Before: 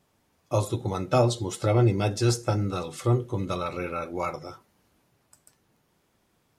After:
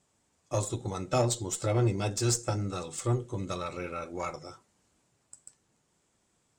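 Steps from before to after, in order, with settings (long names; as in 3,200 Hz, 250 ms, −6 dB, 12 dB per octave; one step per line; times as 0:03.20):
low-pass with resonance 7,800 Hz, resonance Q 4.9
harmonic generator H 6 −26 dB, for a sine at −9 dBFS
level −5.5 dB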